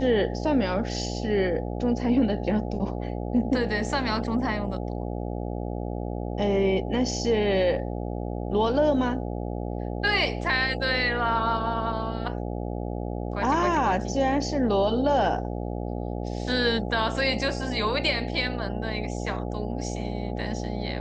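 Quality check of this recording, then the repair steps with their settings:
buzz 60 Hz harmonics 14 -31 dBFS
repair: de-hum 60 Hz, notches 14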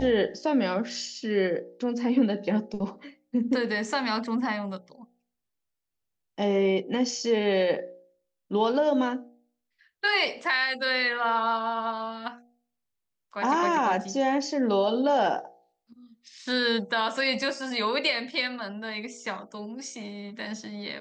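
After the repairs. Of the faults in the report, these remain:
nothing left

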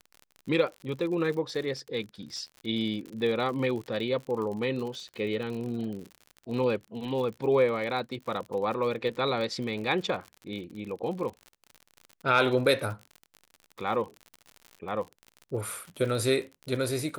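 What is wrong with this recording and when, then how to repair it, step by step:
crackle 59 per s -36 dBFS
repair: de-click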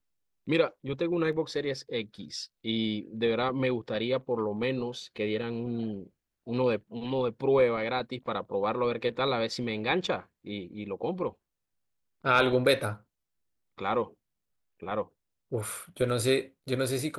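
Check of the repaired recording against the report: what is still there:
nothing left

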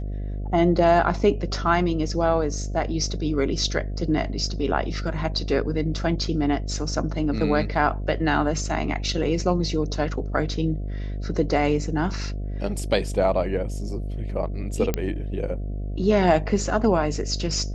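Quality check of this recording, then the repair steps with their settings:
buzz 50 Hz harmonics 14 -29 dBFS
14.94 s: pop -9 dBFS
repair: de-click; de-hum 50 Hz, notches 14

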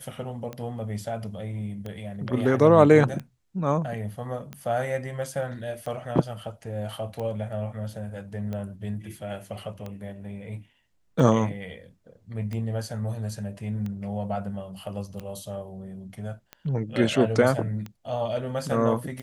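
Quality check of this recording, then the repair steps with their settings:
tick 45 rpm -22 dBFS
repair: de-click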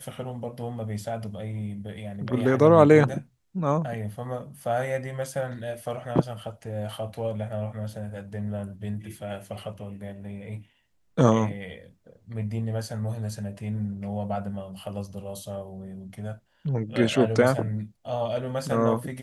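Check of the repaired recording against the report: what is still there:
nothing left

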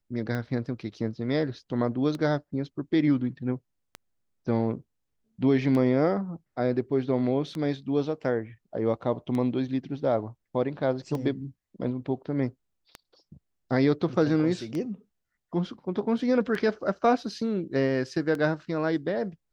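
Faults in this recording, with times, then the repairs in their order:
tick 33 1/3 rpm -20 dBFS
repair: de-click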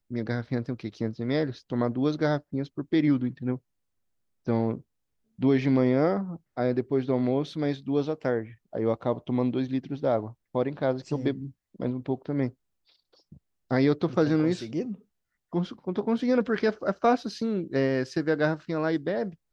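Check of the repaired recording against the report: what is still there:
nothing left

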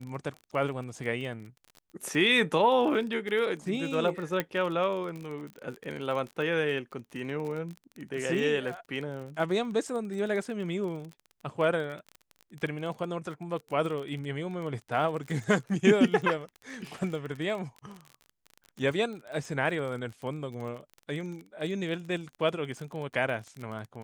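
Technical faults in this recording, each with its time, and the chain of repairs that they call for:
crackle 26 per s -35 dBFS
4.40 s: pop -14 dBFS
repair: de-click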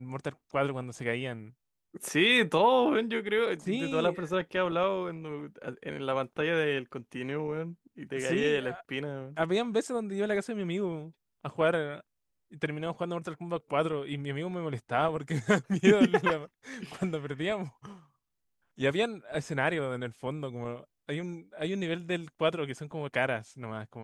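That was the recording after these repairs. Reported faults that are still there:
nothing left

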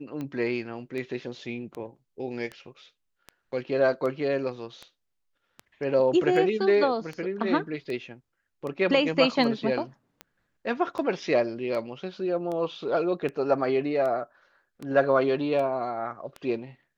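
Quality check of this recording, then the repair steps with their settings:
tick 78 rpm -23 dBFS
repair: de-click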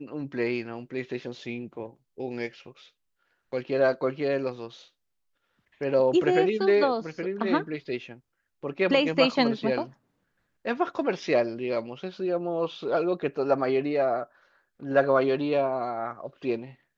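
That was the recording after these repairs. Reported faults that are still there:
nothing left

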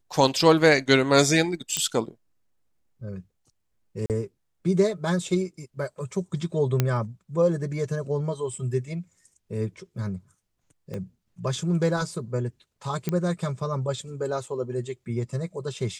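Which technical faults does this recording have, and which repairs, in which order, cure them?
1.77 s: pop -7 dBFS
4.06–4.10 s: dropout 38 ms
6.80 s: pop -8 dBFS
10.94 s: pop -22 dBFS
13.09 s: pop -13 dBFS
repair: de-click; interpolate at 4.06 s, 38 ms

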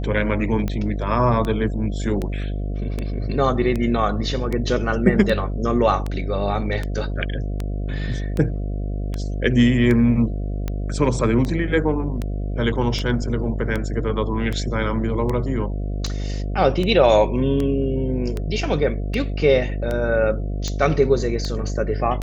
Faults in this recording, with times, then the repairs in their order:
buzz 50 Hz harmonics 14 -25 dBFS
tick 78 rpm -13 dBFS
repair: de-click; de-hum 50 Hz, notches 14

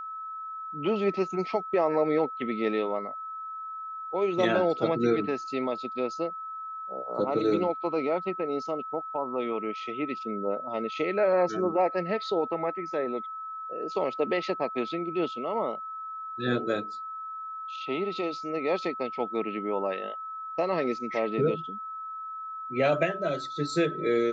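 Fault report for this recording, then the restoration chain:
whine 1.3 kHz -35 dBFS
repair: band-stop 1.3 kHz, Q 30

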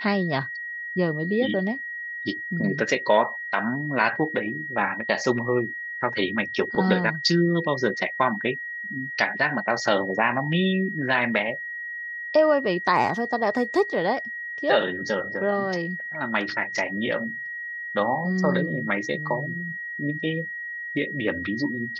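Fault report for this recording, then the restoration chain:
whine 1.9 kHz -31 dBFS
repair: band-stop 1.9 kHz, Q 30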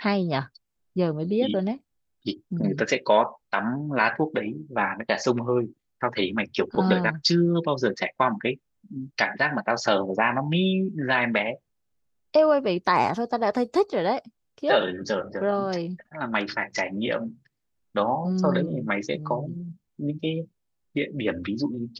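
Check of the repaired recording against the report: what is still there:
nothing left

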